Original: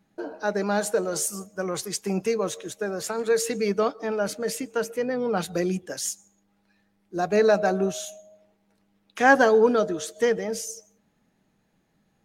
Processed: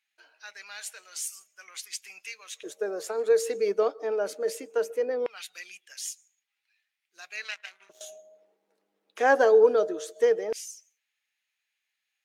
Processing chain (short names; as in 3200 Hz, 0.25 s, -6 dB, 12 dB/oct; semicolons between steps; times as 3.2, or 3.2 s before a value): 7.44–8.01 power-law curve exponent 2; LFO high-pass square 0.19 Hz 430–2400 Hz; gain -7 dB